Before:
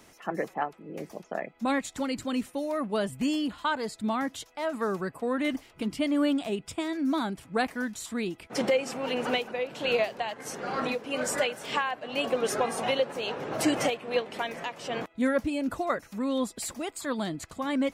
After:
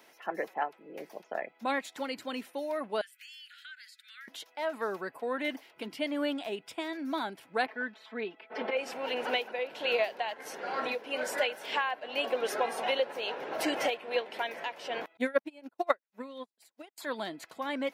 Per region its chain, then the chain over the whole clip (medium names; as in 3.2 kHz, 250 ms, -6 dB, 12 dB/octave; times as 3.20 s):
3.01–4.28 s: steep high-pass 1.4 kHz 96 dB/octave + compression 3:1, threshold -47 dBFS
7.66–8.77 s: high-pass 270 Hz + distance through air 360 m + comb 4.6 ms, depth 92%
15.17–16.98 s: transient shaper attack +10 dB, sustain -7 dB + upward expansion 2.5:1, over -43 dBFS
whole clip: Bessel high-pass 520 Hz, order 2; peaking EQ 7.7 kHz -11 dB 0.89 oct; band-stop 1.2 kHz, Q 7.6